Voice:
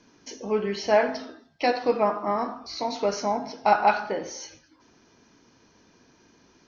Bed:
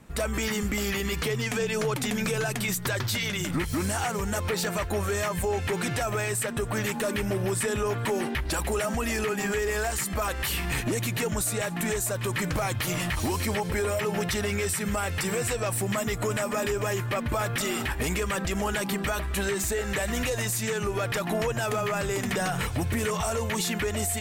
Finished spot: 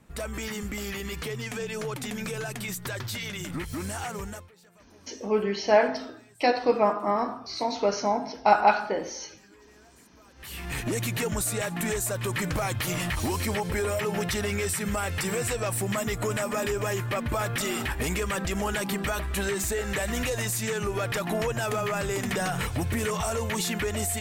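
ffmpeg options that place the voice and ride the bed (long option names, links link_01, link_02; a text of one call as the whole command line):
ffmpeg -i stem1.wav -i stem2.wav -filter_complex "[0:a]adelay=4800,volume=0.5dB[link_01];[1:a]volume=23dB,afade=type=out:start_time=4.21:duration=0.28:silence=0.0668344,afade=type=in:start_time=10.34:duration=0.62:silence=0.0375837[link_02];[link_01][link_02]amix=inputs=2:normalize=0" out.wav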